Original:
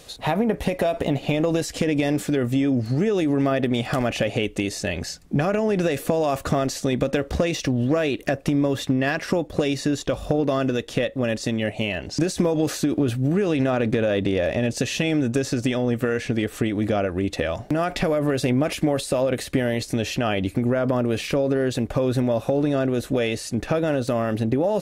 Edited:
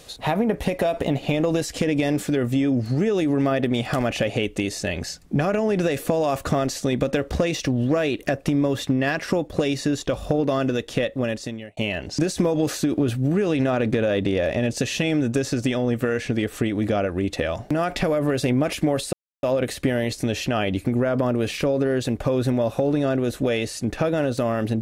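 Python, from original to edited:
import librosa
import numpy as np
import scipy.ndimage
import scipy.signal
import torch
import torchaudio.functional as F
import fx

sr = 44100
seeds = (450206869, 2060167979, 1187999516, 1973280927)

y = fx.edit(x, sr, fx.fade_out_span(start_s=11.19, length_s=0.58),
    fx.insert_silence(at_s=19.13, length_s=0.3), tone=tone)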